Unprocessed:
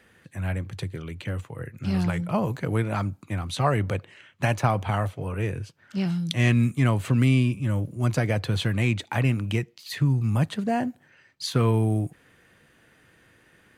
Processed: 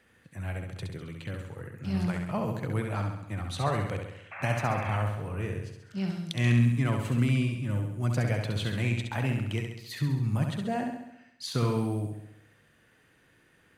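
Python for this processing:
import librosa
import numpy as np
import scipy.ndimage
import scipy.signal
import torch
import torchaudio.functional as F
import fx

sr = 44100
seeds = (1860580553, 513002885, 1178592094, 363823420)

y = fx.spec_paint(x, sr, seeds[0], shape='noise', start_s=4.31, length_s=0.66, low_hz=540.0, high_hz=2700.0, level_db=-35.0)
y = fx.room_flutter(y, sr, wall_m=11.5, rt60_s=0.82)
y = F.gain(torch.from_numpy(y), -6.5).numpy()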